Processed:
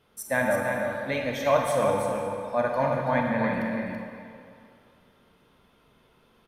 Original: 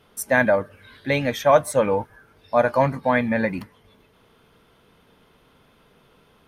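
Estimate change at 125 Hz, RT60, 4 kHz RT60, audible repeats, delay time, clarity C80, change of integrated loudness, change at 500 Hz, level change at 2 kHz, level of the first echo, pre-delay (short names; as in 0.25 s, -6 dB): -4.5 dB, 2.5 s, 1.8 s, 1, 0.331 s, 0.5 dB, -5.5 dB, -4.5 dB, -5.0 dB, -5.5 dB, 31 ms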